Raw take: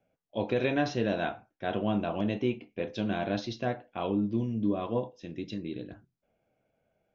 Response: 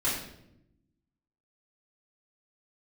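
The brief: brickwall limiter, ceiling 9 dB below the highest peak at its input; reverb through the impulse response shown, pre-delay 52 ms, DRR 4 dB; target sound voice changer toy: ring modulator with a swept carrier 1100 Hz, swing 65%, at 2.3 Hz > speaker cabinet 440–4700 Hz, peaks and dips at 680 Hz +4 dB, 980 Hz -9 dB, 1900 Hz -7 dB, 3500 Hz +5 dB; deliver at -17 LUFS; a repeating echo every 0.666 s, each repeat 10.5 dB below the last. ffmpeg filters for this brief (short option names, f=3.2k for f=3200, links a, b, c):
-filter_complex "[0:a]alimiter=level_in=1dB:limit=-24dB:level=0:latency=1,volume=-1dB,aecho=1:1:666|1332|1998:0.299|0.0896|0.0269,asplit=2[a][b];[1:a]atrim=start_sample=2205,adelay=52[c];[b][c]afir=irnorm=-1:irlink=0,volume=-13dB[d];[a][d]amix=inputs=2:normalize=0,aeval=exprs='val(0)*sin(2*PI*1100*n/s+1100*0.65/2.3*sin(2*PI*2.3*n/s))':c=same,highpass=440,equalizer=f=680:t=q:w=4:g=4,equalizer=f=980:t=q:w=4:g=-9,equalizer=f=1.9k:t=q:w=4:g=-7,equalizer=f=3.5k:t=q:w=4:g=5,lowpass=f=4.7k:w=0.5412,lowpass=f=4.7k:w=1.3066,volume=21.5dB"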